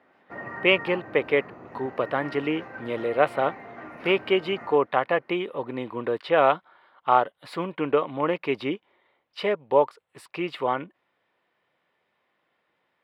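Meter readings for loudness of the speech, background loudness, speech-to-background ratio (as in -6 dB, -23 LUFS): -25.5 LUFS, -40.5 LUFS, 15.0 dB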